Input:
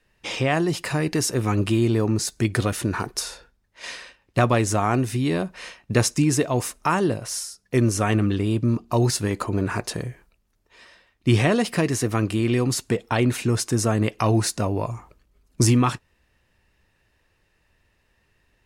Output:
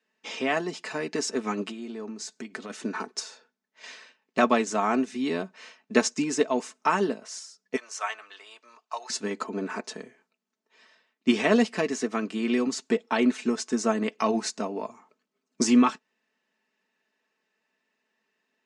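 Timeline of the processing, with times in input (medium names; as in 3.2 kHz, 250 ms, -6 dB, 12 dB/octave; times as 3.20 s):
1.70–2.70 s: compression 5:1, threshold -24 dBFS
7.76–9.10 s: high-pass 740 Hz 24 dB/octave
whole clip: elliptic band-pass 230–7200 Hz, stop band 50 dB; comb 4.6 ms, depth 55%; upward expansion 1.5:1, over -33 dBFS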